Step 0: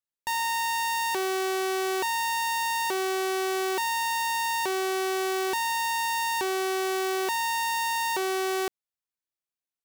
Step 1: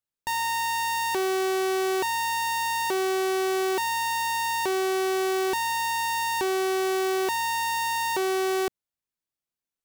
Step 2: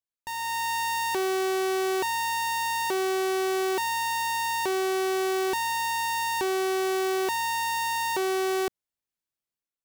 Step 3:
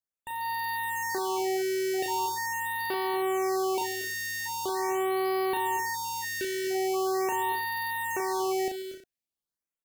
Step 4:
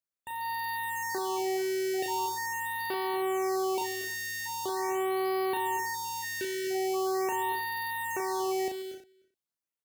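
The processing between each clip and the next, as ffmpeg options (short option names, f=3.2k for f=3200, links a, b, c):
-af "lowshelf=f=360:g=7"
-af "dynaudnorm=f=180:g=5:m=7dB,volume=-8dB"
-filter_complex "[0:a]asplit=2[a][b];[b]adelay=36,volume=-5dB[c];[a][c]amix=inputs=2:normalize=0,aecho=1:1:140|235|259|322:0.126|0.251|0.224|0.126,afftfilt=real='re*(1-between(b*sr/1024,940*pow(7200/940,0.5+0.5*sin(2*PI*0.42*pts/sr))/1.41,940*pow(7200/940,0.5+0.5*sin(2*PI*0.42*pts/sr))*1.41))':imag='im*(1-between(b*sr/1024,940*pow(7200/940,0.5+0.5*sin(2*PI*0.42*pts/sr))/1.41,940*pow(7200/940,0.5+0.5*sin(2*PI*0.42*pts/sr))*1.41))':win_size=1024:overlap=0.75,volume=-3.5dB"
-filter_complex "[0:a]highpass=53,asplit=2[a][b];[b]adelay=303.2,volume=-24dB,highshelf=f=4k:g=-6.82[c];[a][c]amix=inputs=2:normalize=0,volume=-2dB"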